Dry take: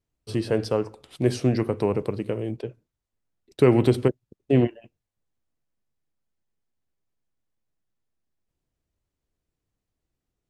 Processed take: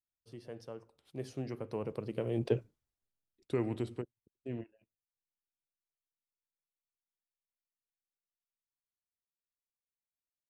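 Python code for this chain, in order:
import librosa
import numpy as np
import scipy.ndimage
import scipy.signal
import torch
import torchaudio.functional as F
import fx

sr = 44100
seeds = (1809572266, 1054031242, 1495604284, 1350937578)

y = fx.doppler_pass(x, sr, speed_mps=17, closest_m=1.8, pass_at_s=2.56)
y = F.gain(torch.from_numpy(y), 3.5).numpy()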